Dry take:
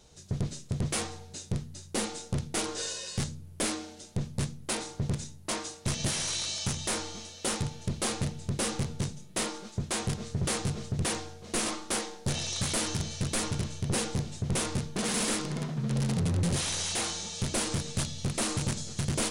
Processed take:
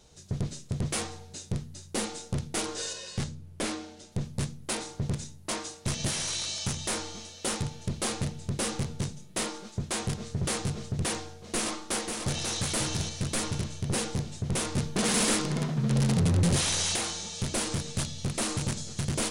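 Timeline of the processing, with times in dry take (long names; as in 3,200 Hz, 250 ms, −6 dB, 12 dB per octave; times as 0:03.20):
0:02.93–0:04.12: high-shelf EQ 7,600 Hz −9.5 dB
0:11.49–0:12.55: delay throw 540 ms, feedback 30%, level −5 dB
0:14.77–0:16.96: clip gain +4 dB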